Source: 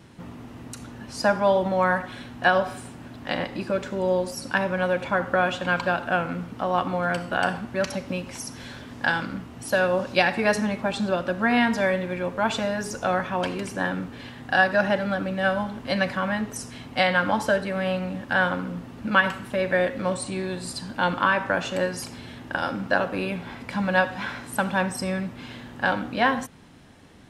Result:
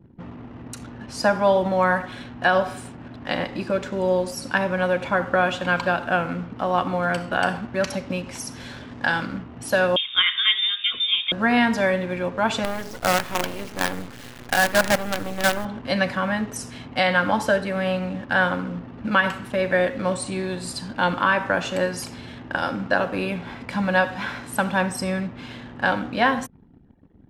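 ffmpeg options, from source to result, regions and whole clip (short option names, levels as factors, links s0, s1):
-filter_complex "[0:a]asettb=1/sr,asplit=3[s0][s1][s2];[s0]atrim=end=9.964[s3];[s1]atrim=start=9.96:end=11.32,asetpts=PTS-STARTPTS,afade=t=in:d=0.004:c=qsin,afade=t=out:st=1.356:d=0.004:c=qsin,equalizer=f=3000:t=o:w=0.35:g=-13,lowpass=f=3200:t=q:w=0.5098,lowpass=f=3200:t=q:w=0.6013,lowpass=f=3200:t=q:w=0.9,lowpass=f=3200:t=q:w=2.563,afreqshift=-3800[s4];[s2]atrim=start=11.316[s5];[s3][s4]acrossfade=d=0.004:c1=hsin:c2=qsin[s6];[s6][s5]acrossfade=d=0.004:c1=qsin:c2=hsin,asettb=1/sr,asplit=3[s7][s8][s9];[s7]atrim=end=12.644[s10];[s8]atrim=start=12.64:end=15.65,asetpts=PTS-STARTPTS,afade=t=in:d=0.004:c=qsin,afade=t=out:st=3.006:d=0.004:c=qsin,lowpass=f=4700:w=0.5412,lowpass=f=4700:w=1.3066,acrusher=bits=4:dc=4:mix=0:aa=0.000001[s11];[s9]atrim=start=15.646[s12];[s10][s11]acrossfade=d=0.004:c1=hsin:c2=qsin[s13];[s13][s12]acrossfade=d=0.004:c1=qsin:c2=hsin,anlmdn=0.0251,alimiter=level_in=2.51:limit=0.891:release=50:level=0:latency=1,volume=0.501"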